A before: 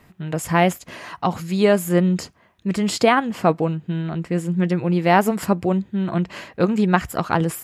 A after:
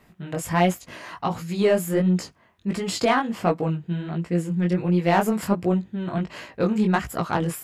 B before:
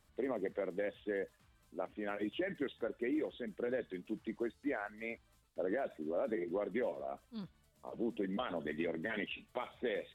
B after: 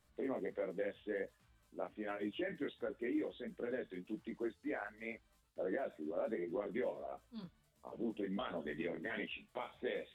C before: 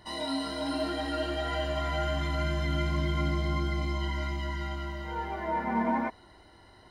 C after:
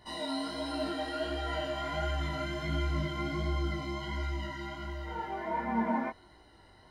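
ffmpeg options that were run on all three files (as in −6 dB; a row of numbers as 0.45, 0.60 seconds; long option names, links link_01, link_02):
-af "aeval=exprs='0.708*(cos(1*acos(clip(val(0)/0.708,-1,1)))-cos(1*PI/2))+0.0398*(cos(5*acos(clip(val(0)/0.708,-1,1)))-cos(5*PI/2))':channel_layout=same,flanger=delay=16.5:depth=6.7:speed=1.4,volume=-2dB"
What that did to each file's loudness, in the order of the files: −3.5, −2.5, −3.5 LU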